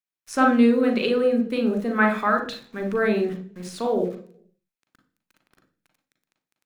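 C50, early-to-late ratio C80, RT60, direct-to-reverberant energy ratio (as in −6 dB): 8.0 dB, 13.5 dB, 0.45 s, 3.0 dB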